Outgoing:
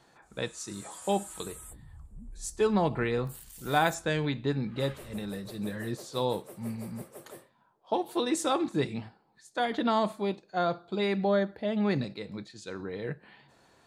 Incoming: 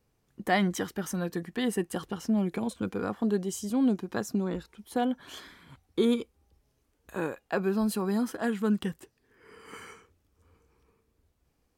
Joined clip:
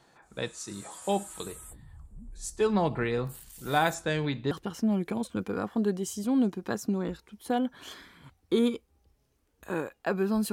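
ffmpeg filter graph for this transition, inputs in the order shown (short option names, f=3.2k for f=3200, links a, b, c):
-filter_complex "[0:a]apad=whole_dur=10.52,atrim=end=10.52,atrim=end=4.512[a];[1:a]atrim=start=1.968:end=7.98[b];[a][b]acrossfade=d=0.004:c1=hsin:c2=hsin"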